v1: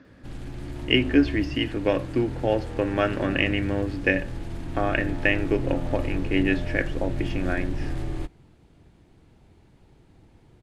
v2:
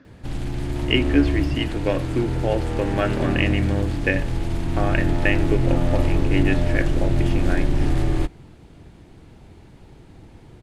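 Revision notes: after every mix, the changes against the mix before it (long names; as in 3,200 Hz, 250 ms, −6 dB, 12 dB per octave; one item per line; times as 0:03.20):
background +9.5 dB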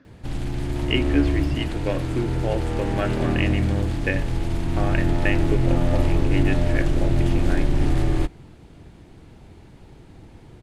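speech −3.5 dB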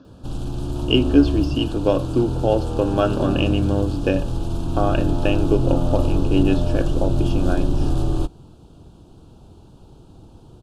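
speech +8.0 dB
master: add Butterworth band-reject 2,000 Hz, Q 1.3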